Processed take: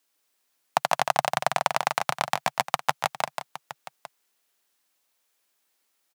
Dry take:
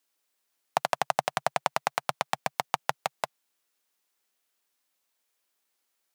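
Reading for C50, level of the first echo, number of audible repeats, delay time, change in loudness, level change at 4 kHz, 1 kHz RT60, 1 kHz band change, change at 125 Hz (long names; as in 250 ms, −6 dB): no reverb audible, −5.5 dB, 2, 145 ms, +4.0 dB, +4.5 dB, no reverb audible, +4.0 dB, +4.0 dB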